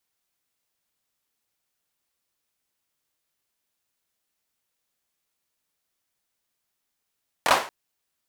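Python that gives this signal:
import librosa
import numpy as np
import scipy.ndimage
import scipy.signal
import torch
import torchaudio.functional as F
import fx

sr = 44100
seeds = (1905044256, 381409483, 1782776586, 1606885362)

y = fx.drum_clap(sr, seeds[0], length_s=0.23, bursts=3, spacing_ms=24, hz=890.0, decay_s=0.39)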